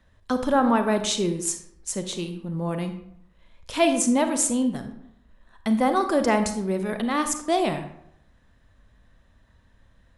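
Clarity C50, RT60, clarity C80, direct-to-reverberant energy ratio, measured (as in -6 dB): 9.5 dB, 0.75 s, 12.0 dB, 7.5 dB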